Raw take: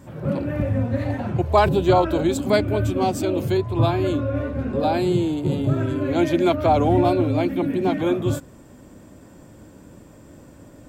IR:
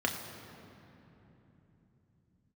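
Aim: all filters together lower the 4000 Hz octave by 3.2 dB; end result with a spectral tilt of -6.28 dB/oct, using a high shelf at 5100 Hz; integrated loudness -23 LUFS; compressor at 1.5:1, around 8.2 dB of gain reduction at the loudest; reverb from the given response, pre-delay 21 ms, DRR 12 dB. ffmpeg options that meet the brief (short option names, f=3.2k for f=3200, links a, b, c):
-filter_complex "[0:a]equalizer=f=4k:t=o:g=-6.5,highshelf=f=5.1k:g=6.5,acompressor=threshold=-35dB:ratio=1.5,asplit=2[a][b];[1:a]atrim=start_sample=2205,adelay=21[c];[b][c]afir=irnorm=-1:irlink=0,volume=-20dB[d];[a][d]amix=inputs=2:normalize=0,volume=4.5dB"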